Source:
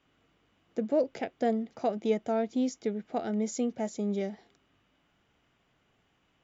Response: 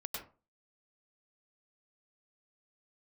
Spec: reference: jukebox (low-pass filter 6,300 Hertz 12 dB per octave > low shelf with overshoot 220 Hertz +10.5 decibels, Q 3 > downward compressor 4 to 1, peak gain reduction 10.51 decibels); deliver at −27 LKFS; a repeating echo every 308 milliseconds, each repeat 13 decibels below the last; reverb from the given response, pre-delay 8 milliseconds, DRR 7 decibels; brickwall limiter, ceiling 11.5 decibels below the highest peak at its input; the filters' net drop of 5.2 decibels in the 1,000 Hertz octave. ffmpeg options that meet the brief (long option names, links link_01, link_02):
-filter_complex "[0:a]equalizer=frequency=1000:width_type=o:gain=-7.5,alimiter=level_in=4.5dB:limit=-24dB:level=0:latency=1,volume=-4.5dB,aecho=1:1:308|616|924:0.224|0.0493|0.0108,asplit=2[link_01][link_02];[1:a]atrim=start_sample=2205,adelay=8[link_03];[link_02][link_03]afir=irnorm=-1:irlink=0,volume=-7dB[link_04];[link_01][link_04]amix=inputs=2:normalize=0,lowpass=6300,lowshelf=frequency=220:width_type=q:width=3:gain=10.5,acompressor=threshold=-37dB:ratio=4,volume=14dB"